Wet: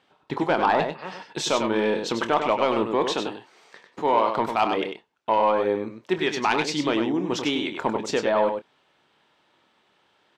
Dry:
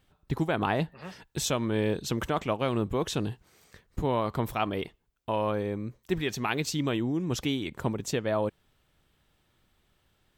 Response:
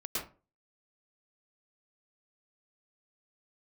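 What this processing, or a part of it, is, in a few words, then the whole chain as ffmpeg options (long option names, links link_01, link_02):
intercom: -filter_complex "[0:a]asettb=1/sr,asplit=3[link_01][link_02][link_03];[link_01]atrim=end=3.084[link_04];[link_02]atrim=start=3.08:end=4.37,asetpts=PTS-STARTPTS,afade=type=in:duration=0.004:curve=qsin,afade=type=out:start_time=1.286:duration=0.004:curve=qsin,highpass=frequency=250:poles=1[link_05];[link_03]atrim=start=4.366[link_06];[link_04][link_05]acrossfade=duration=0.004:curve1=hsin:curve2=qsin[link_07];[link_07][link_06]acrossfade=duration=0.004:curve1=qsin:curve2=hsin,highpass=310,lowpass=4600,equalizer=frequency=910:width_type=o:width=0.34:gain=5.5,asoftclip=type=tanh:threshold=-17.5dB,asplit=2[link_08][link_09];[link_09]adelay=27,volume=-11.5dB[link_10];[link_08][link_10]amix=inputs=2:normalize=0,aecho=1:1:98:0.473,volume=7.5dB"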